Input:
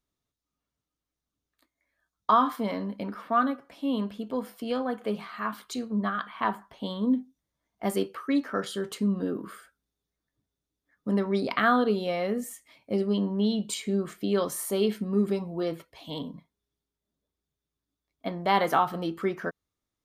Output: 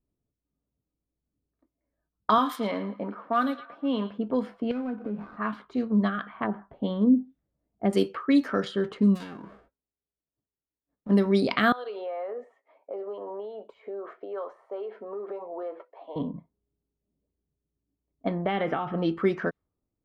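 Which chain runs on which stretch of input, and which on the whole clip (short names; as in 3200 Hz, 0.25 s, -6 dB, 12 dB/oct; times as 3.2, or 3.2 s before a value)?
2.38–4.18 HPF 370 Hz 6 dB/oct + thin delay 0.112 s, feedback 55%, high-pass 2500 Hz, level -5.5 dB
4.71–5.37 switching dead time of 0.19 ms + compressor 5:1, threshold -41 dBFS + small resonant body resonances 240/1500/2500 Hz, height 10 dB, ringing for 25 ms
6.07–7.93 treble ducked by the level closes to 570 Hz, closed at -21 dBFS + bell 1000 Hz -7.5 dB 0.45 oct
9.15–11.09 spectral whitening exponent 0.3 + gate -59 dBFS, range -8 dB + compressor 12:1, threshold -40 dBFS
11.72–16.16 HPF 460 Hz 24 dB/oct + compressor, threshold -41 dBFS + overdrive pedal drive 14 dB, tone 1600 Hz, clips at -13 dBFS
18.46–18.98 polynomial smoothing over 25 samples + notch 1000 Hz, Q 9.5 + compressor, threshold -25 dBFS
whole clip: low-pass opened by the level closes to 490 Hz, open at -22 dBFS; dynamic EQ 1100 Hz, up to -7 dB, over -37 dBFS, Q 0.74; gain +5.5 dB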